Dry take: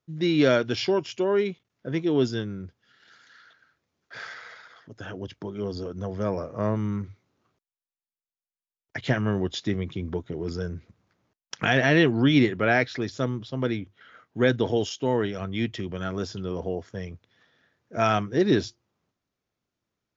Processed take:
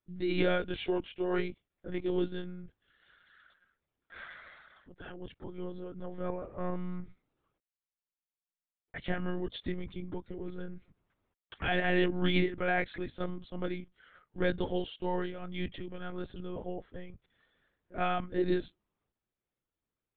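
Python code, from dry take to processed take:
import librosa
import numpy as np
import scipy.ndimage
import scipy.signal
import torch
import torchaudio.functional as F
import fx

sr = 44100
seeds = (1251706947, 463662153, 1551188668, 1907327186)

y = fx.lpc_monotone(x, sr, seeds[0], pitch_hz=180.0, order=16)
y = y * librosa.db_to_amplitude(-8.0)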